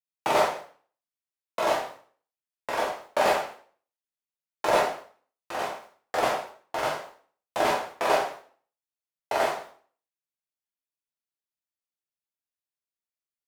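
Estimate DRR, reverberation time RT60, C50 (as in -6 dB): -4.0 dB, 0.45 s, 5.5 dB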